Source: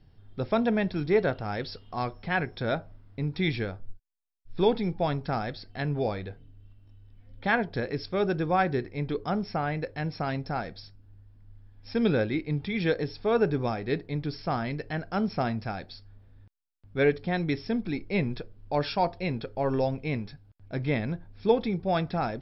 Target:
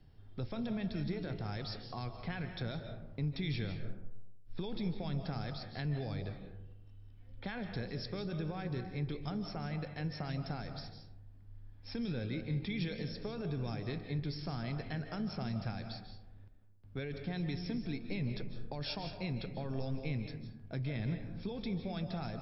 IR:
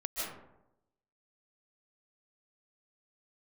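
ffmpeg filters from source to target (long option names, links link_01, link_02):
-filter_complex "[0:a]alimiter=limit=-21.5dB:level=0:latency=1:release=13,acrossover=split=190|3000[link_01][link_02][link_03];[link_02]acompressor=threshold=-40dB:ratio=6[link_04];[link_01][link_04][link_03]amix=inputs=3:normalize=0,asplit=2[link_05][link_06];[1:a]atrim=start_sample=2205,asetrate=42336,aresample=44100[link_07];[link_06][link_07]afir=irnorm=-1:irlink=0,volume=-7dB[link_08];[link_05][link_08]amix=inputs=2:normalize=0,volume=-5.5dB"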